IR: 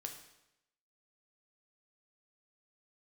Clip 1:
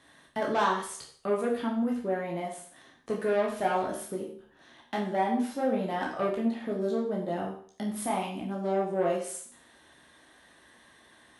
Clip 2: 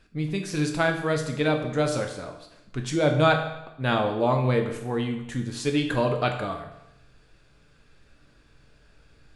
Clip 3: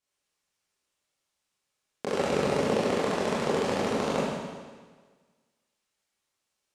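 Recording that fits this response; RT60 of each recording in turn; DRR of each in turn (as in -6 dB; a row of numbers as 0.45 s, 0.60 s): 2; 0.50 s, 0.85 s, 1.5 s; -2.5 dB, 3.5 dB, -9.0 dB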